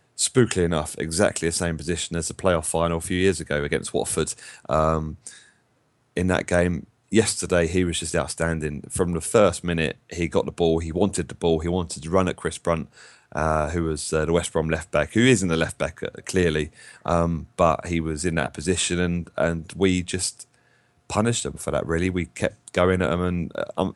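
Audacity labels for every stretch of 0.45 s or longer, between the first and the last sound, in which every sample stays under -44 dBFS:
5.460000	6.160000	silence
20.540000	21.100000	silence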